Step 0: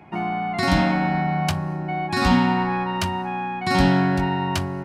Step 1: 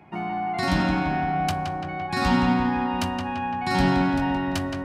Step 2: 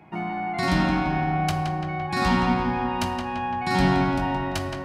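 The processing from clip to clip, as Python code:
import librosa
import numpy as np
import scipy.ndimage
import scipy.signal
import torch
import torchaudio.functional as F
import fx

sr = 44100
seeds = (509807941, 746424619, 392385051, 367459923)

y1 = fx.echo_filtered(x, sr, ms=170, feedback_pct=69, hz=3600.0, wet_db=-4.5)
y1 = y1 * 10.0 ** (-4.0 / 20.0)
y2 = fx.room_shoebox(y1, sr, seeds[0], volume_m3=870.0, walls='mixed', distance_m=0.6)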